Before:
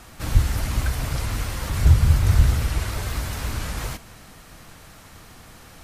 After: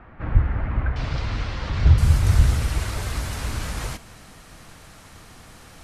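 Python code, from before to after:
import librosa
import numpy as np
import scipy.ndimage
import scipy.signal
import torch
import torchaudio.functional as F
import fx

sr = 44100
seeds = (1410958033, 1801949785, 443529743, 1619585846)

y = fx.lowpass(x, sr, hz=fx.steps((0.0, 2000.0), (0.96, 4800.0), (1.98, 12000.0)), slope=24)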